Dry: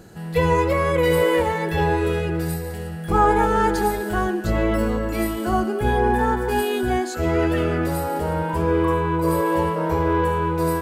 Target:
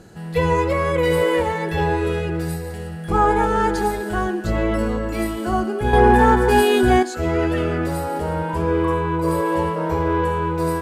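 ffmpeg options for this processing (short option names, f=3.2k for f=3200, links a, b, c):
-filter_complex "[0:a]lowpass=11k,asettb=1/sr,asplit=3[a][b][c];[a]atrim=end=5.934[d];[b]atrim=start=5.93:end=7.03,asetpts=PTS-STARTPTS,afade=t=in:d=0.004:c=qsin,afade=t=out:st=1.096:d=0.004:c=qsin,acontrast=88[e];[c]atrim=start=7.026[f];[d][e]acrossfade=d=0.004:c1=hsin:c2=qsin[g];[g][f]acrossfade=d=0.004:c1=qsin:c2=hsin"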